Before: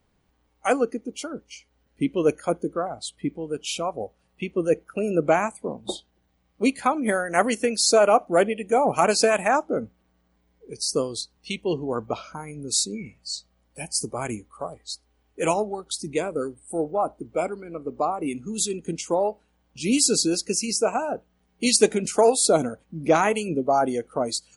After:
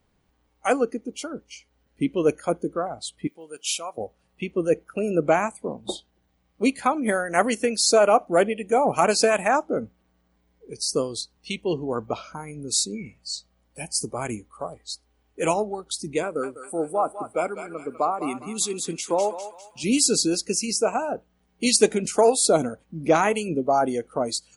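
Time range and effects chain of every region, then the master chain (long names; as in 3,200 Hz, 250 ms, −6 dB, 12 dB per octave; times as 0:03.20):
0:03.27–0:03.98: high-pass filter 1,400 Hz 6 dB per octave + high-shelf EQ 6,900 Hz +11 dB
0:16.23–0:19.84: high-pass filter 180 Hz 6 dB per octave + parametric band 1,400 Hz +5 dB 0.84 octaves + feedback echo with a high-pass in the loop 201 ms, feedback 51%, high-pass 1,200 Hz, level −6 dB
whole clip: no processing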